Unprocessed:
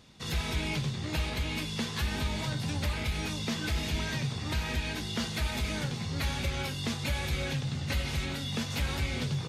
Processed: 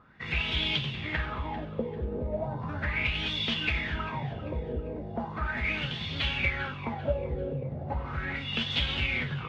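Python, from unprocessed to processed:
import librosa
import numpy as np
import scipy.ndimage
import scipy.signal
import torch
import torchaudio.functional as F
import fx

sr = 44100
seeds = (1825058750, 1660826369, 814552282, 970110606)

y = fx.filter_lfo_lowpass(x, sr, shape='sine', hz=0.37, low_hz=460.0, high_hz=3300.0, q=6.9)
y = fx.echo_feedback(y, sr, ms=394, feedback_pct=34, wet_db=-15)
y = fx.upward_expand(y, sr, threshold_db=-29.0, expansion=1.5)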